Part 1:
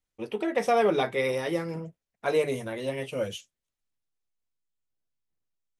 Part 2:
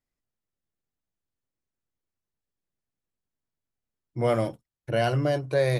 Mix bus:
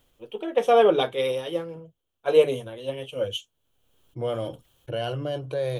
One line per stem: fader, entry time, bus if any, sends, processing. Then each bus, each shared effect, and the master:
−2.0 dB, 0.00 s, no send, multiband upward and downward expander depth 100%
−12.0 dB, 0.00 s, no send, envelope flattener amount 50%; automatic ducking −17 dB, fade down 1.10 s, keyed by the first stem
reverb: not used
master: thirty-one-band graphic EQ 200 Hz −7 dB, 500 Hz +6 dB, 2,000 Hz −10 dB, 3,150 Hz +12 dB, 5,000 Hz −10 dB, 8,000 Hz −4 dB; speech leveller within 4 dB 2 s

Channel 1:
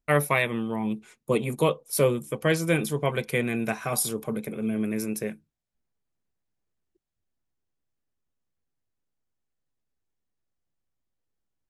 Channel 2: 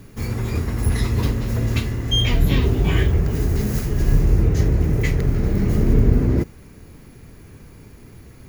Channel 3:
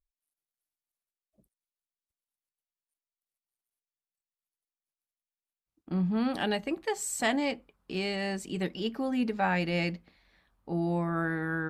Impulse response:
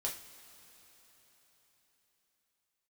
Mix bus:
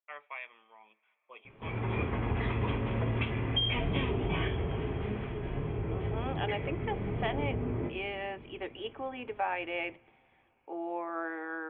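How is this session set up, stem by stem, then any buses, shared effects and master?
−15.0 dB, 0.00 s, send −16.5 dB, high-pass filter 990 Hz 12 dB per octave
+0.5 dB, 1.45 s, send −9 dB, automatic ducking −18 dB, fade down 1.85 s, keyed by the third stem
0.0 dB, 0.00 s, send −21.5 dB, Butterworth high-pass 300 Hz 36 dB per octave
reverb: on, pre-delay 3 ms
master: Chebyshev low-pass with heavy ripple 3,400 Hz, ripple 6 dB; low-shelf EQ 120 Hz −10.5 dB; downward compressor 5 to 1, threshold −27 dBFS, peak gain reduction 8 dB

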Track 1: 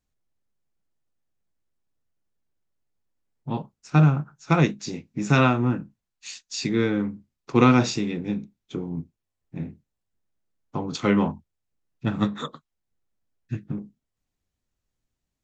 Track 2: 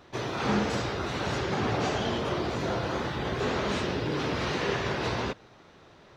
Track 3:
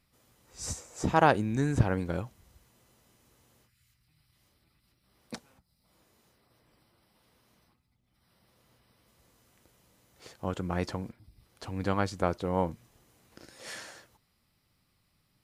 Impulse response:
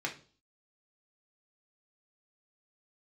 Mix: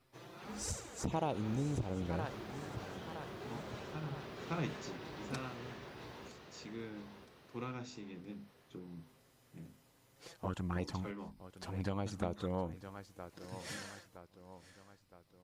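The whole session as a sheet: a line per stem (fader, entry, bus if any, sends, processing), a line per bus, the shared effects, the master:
−11.5 dB, 0.00 s, no bus, no send, no echo send, mains-hum notches 50/100/150/200/250 Hz; speech leveller within 4 dB 0.5 s; automatic ducking −11 dB, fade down 0.60 s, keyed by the third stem
−18.0 dB, 0.00 s, bus A, no send, echo send −3.5 dB, noise that follows the level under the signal 27 dB
−0.5 dB, 0.00 s, bus A, no send, echo send −20.5 dB, no processing
bus A: 0.0 dB, flanger swept by the level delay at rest 7.8 ms, full sweep at −26 dBFS; downward compressor 4 to 1, threshold −32 dBFS, peak gain reduction 13 dB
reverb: not used
echo: repeating echo 966 ms, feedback 49%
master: saturating transformer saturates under 320 Hz

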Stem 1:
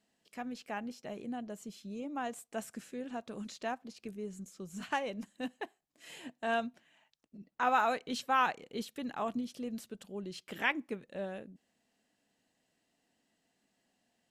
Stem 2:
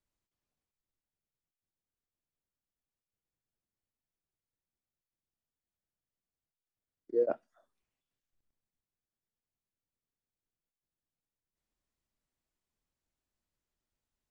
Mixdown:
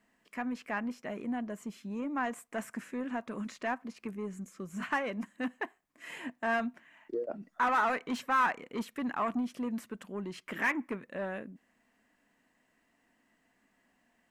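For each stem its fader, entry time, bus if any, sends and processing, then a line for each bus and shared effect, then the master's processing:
−0.5 dB, 0.00 s, no send, parametric band 820 Hz −6.5 dB 0.22 octaves; soft clipping −33.5 dBFS, distortion −7 dB; octave-band graphic EQ 250/1,000/2,000/4,000 Hz +7/+11/+10/−6 dB
+2.5 dB, 0.00 s, no send, downward compressor 12 to 1, threshold −34 dBFS, peak gain reduction 11.5 dB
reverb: not used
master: no processing

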